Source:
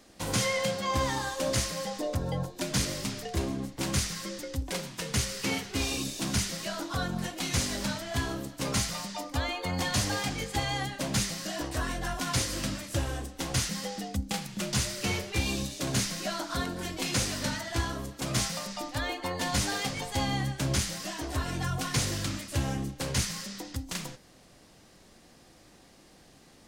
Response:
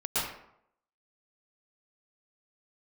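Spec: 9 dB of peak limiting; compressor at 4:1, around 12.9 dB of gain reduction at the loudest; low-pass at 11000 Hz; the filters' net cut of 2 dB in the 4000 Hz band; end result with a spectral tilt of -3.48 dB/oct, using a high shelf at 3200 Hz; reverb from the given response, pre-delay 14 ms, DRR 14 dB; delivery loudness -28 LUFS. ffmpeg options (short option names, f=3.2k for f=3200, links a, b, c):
-filter_complex "[0:a]lowpass=11k,highshelf=f=3.2k:g=6,equalizer=f=4k:t=o:g=-7.5,acompressor=threshold=-39dB:ratio=4,alimiter=level_in=10dB:limit=-24dB:level=0:latency=1,volume=-10dB,asplit=2[a][b];[1:a]atrim=start_sample=2205,adelay=14[c];[b][c]afir=irnorm=-1:irlink=0,volume=-23dB[d];[a][d]amix=inputs=2:normalize=0,volume=15dB"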